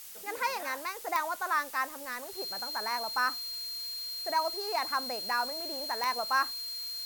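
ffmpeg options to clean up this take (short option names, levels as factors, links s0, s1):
-af "adeclick=t=4,bandreject=f=4200:w=30,afftdn=nr=30:nf=-42"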